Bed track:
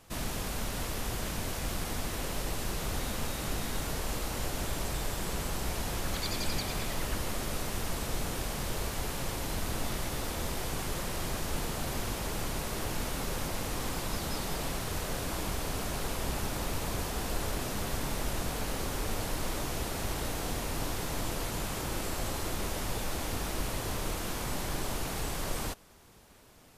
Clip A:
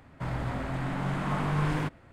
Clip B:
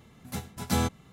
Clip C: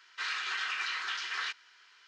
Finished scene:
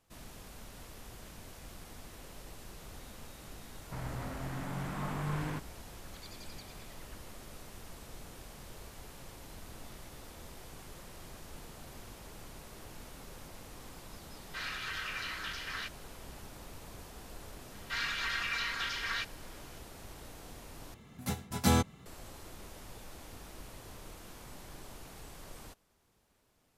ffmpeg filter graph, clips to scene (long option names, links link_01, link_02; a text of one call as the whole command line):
ffmpeg -i bed.wav -i cue0.wav -i cue1.wav -i cue2.wav -filter_complex "[3:a]asplit=2[link_01][link_02];[0:a]volume=-15dB[link_03];[link_02]aecho=1:1:4.3:0.67[link_04];[link_03]asplit=2[link_05][link_06];[link_05]atrim=end=20.944[link_07];[2:a]atrim=end=1.12[link_08];[link_06]atrim=start=22.056[link_09];[1:a]atrim=end=2.12,asetpts=PTS-STARTPTS,volume=-8dB,afade=type=in:duration=0.004:curve=hsin,afade=type=out:start_time=2.116:duration=0.004:curve=hsin,adelay=3710[link_10];[link_01]atrim=end=2.07,asetpts=PTS-STARTPTS,volume=-5dB,afade=type=in:duration=0.004:curve=hsin,afade=type=out:start_time=2.066:duration=0.004:curve=hsin,adelay=14360[link_11];[link_04]atrim=end=2.07,asetpts=PTS-STARTPTS,volume=-2dB,afade=type=in:duration=0.004:curve=hsin,afade=type=out:start_time=2.066:duration=0.004:curve=hsin,adelay=17720[link_12];[link_07][link_08]acrossfade=duration=0.004:curve1=hsin:curve2=hsin[link_13];[link_13][link_09]acrossfade=duration=0.004:curve1=hsin:curve2=hsin[link_14];[link_14][link_10][link_11][link_12]amix=inputs=4:normalize=0" out.wav